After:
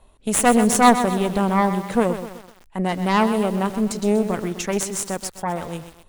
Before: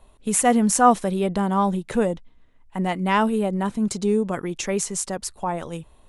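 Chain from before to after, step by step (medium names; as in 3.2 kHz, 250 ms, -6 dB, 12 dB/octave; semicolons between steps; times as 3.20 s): Chebyshev shaper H 4 -11 dB, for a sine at -4 dBFS; bit-crushed delay 127 ms, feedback 55%, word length 6-bit, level -10 dB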